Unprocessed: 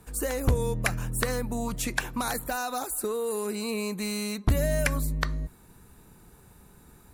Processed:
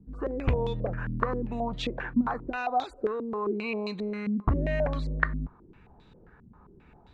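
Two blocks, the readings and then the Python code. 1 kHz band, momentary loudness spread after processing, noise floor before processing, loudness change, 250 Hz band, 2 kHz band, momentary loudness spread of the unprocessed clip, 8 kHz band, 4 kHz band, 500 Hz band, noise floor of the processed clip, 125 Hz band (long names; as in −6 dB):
+2.5 dB, 5 LU, −55 dBFS, −1.0 dB, +1.5 dB, −2.0 dB, 5 LU, below −25 dB, −5.5 dB, −0.5 dB, −57 dBFS, −2.0 dB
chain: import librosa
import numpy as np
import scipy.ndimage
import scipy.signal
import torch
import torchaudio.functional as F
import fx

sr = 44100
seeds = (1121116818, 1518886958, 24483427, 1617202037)

y = fx.air_absorb(x, sr, metres=84.0)
y = fx.filter_held_lowpass(y, sr, hz=7.5, low_hz=240.0, high_hz=3700.0)
y = y * 10.0 ** (-2.5 / 20.0)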